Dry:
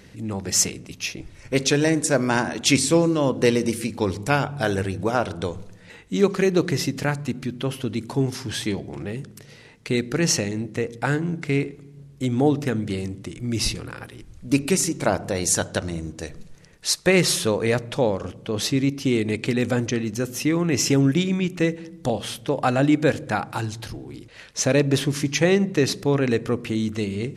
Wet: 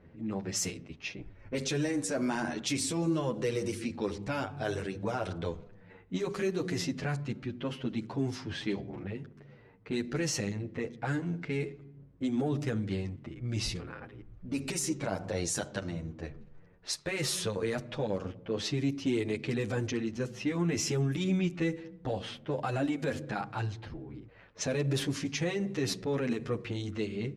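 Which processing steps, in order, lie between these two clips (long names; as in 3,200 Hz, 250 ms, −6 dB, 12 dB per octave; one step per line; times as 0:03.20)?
in parallel at −9 dB: soft clipping −20.5 dBFS, distortion −9 dB
on the sum: low-pass that shuts in the quiet parts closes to 1,200 Hz, open at −15 dBFS
brickwall limiter −13.5 dBFS, peak gain reduction 8 dB
barber-pole flanger 9 ms −1.3 Hz
level −6.5 dB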